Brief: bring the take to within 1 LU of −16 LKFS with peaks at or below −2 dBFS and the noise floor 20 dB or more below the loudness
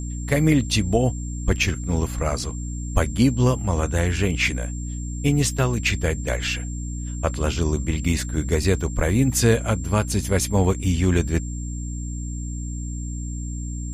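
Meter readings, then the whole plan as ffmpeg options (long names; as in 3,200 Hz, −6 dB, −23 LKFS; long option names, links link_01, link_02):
mains hum 60 Hz; hum harmonics up to 300 Hz; level of the hum −27 dBFS; interfering tone 7,400 Hz; level of the tone −39 dBFS; integrated loudness −23.0 LKFS; sample peak −4.0 dBFS; target loudness −16.0 LKFS
→ -af "bandreject=frequency=60:width_type=h:width=6,bandreject=frequency=120:width_type=h:width=6,bandreject=frequency=180:width_type=h:width=6,bandreject=frequency=240:width_type=h:width=6,bandreject=frequency=300:width_type=h:width=6"
-af "bandreject=frequency=7400:width=30"
-af "volume=7dB,alimiter=limit=-2dB:level=0:latency=1"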